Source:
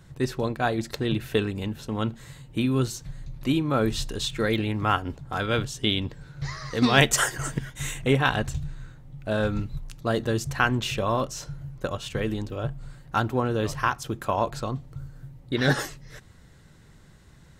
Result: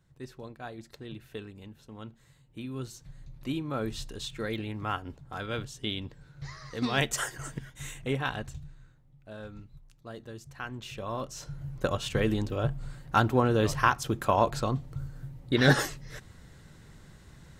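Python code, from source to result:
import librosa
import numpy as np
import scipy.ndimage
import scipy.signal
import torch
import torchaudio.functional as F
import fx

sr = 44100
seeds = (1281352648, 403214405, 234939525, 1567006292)

y = fx.gain(x, sr, db=fx.line((2.46, -16.5), (3.22, -9.0), (8.27, -9.0), (9.31, -18.0), (10.51, -18.0), (11.27, -8.0), (11.76, 1.0)))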